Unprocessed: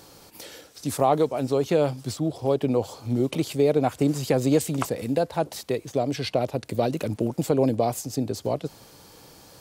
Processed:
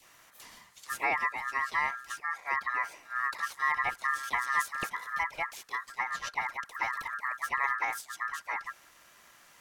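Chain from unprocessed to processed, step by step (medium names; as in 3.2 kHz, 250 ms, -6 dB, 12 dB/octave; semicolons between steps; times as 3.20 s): phase dispersion lows, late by 50 ms, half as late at 500 Hz; ring modulator 1.5 kHz; trim -6 dB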